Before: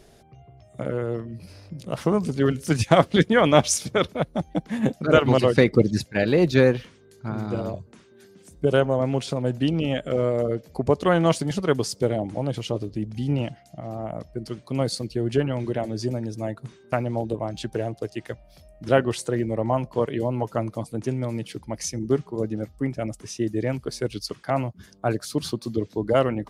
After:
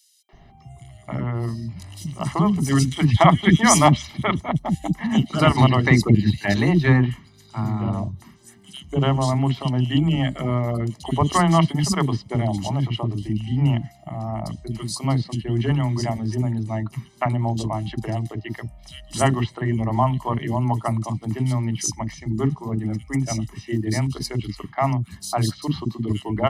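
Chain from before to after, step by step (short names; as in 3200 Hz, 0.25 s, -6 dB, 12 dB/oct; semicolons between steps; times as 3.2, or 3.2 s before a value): comb 1 ms, depth 87%; three bands offset in time highs, mids, lows 0.29/0.33 s, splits 350/3500 Hz; gain +2.5 dB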